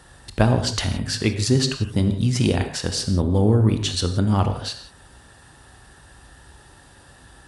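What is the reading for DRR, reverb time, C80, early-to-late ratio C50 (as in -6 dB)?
7.0 dB, not exponential, 10.5 dB, 9.0 dB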